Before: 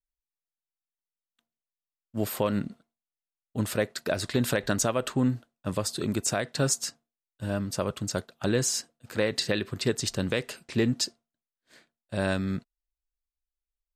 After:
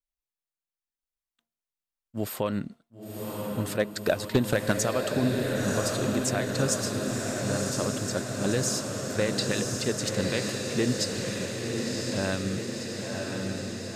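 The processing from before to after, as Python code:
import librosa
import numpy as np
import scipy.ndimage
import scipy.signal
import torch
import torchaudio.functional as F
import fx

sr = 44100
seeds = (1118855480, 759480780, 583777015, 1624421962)

y = fx.transient(x, sr, attack_db=8, sustain_db=-6, at=(3.79, 4.71), fade=0.02)
y = fx.echo_diffused(y, sr, ms=1033, feedback_pct=70, wet_db=-3)
y = np.clip(y, -10.0 ** (-11.5 / 20.0), 10.0 ** (-11.5 / 20.0))
y = y * librosa.db_to_amplitude(-2.0)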